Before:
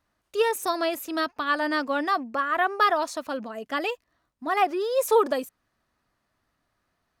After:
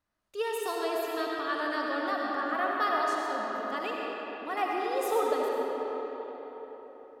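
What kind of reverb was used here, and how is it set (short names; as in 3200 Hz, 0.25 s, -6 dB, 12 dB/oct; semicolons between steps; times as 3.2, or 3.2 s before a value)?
digital reverb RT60 4.8 s, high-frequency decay 0.6×, pre-delay 40 ms, DRR -3 dB; gain -9.5 dB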